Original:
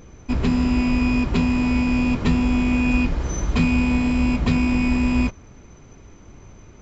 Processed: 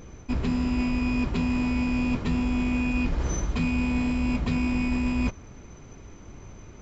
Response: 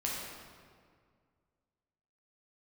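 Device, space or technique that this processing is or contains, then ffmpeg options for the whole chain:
compression on the reversed sound: -af "areverse,acompressor=threshold=-22dB:ratio=6,areverse"

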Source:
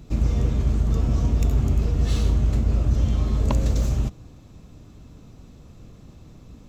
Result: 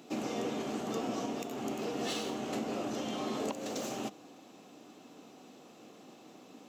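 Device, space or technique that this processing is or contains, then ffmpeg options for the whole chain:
laptop speaker: -af "highpass=f=260:w=0.5412,highpass=f=260:w=1.3066,equalizer=f=760:t=o:w=0.22:g=8,equalizer=f=2.9k:t=o:w=0.27:g=5,alimiter=level_in=1dB:limit=-24dB:level=0:latency=1:release=364,volume=-1dB"

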